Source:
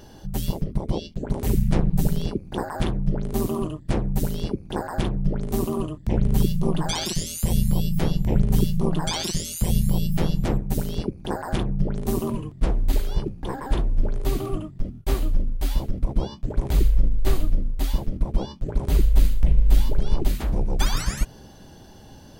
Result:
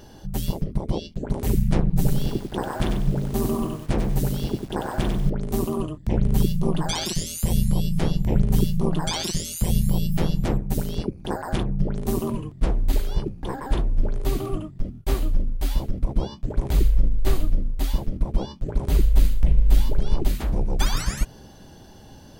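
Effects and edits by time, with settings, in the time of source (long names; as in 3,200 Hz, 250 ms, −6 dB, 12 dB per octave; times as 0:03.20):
0:01.87–0:05.30: feedback echo at a low word length 95 ms, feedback 35%, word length 7 bits, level −5.5 dB
0:07.65–0:08.23: low-pass filter 12,000 Hz 24 dB per octave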